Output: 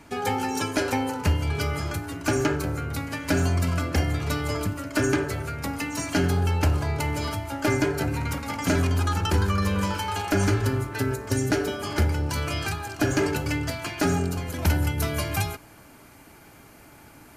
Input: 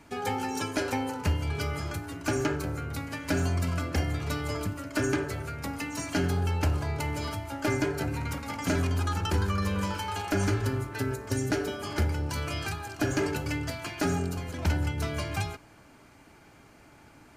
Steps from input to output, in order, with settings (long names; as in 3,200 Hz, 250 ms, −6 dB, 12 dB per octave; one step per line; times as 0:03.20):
parametric band 12,000 Hz +2 dB 0.58 octaves, from 0:14.50 +14 dB
level +4.5 dB